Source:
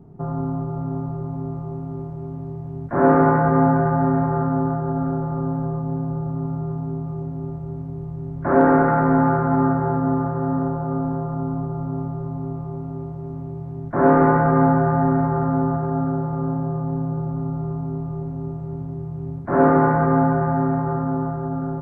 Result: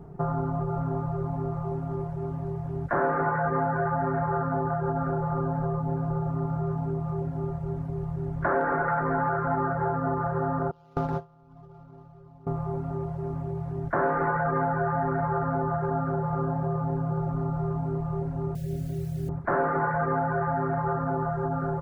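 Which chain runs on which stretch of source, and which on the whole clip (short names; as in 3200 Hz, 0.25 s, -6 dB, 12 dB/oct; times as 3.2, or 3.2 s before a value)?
10.71–12.47 median filter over 15 samples + gate with hold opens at -15 dBFS, closes at -20 dBFS
18.55–19.29 steep low-pass 660 Hz 48 dB/oct + notch 440 Hz, Q 5.8 + requantised 10-bit, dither triangular
whole clip: reverb removal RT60 0.75 s; fifteen-band EQ 100 Hz -8 dB, 250 Hz -11 dB, 1600 Hz +5 dB; compressor 5:1, threshold -30 dBFS; gain +6 dB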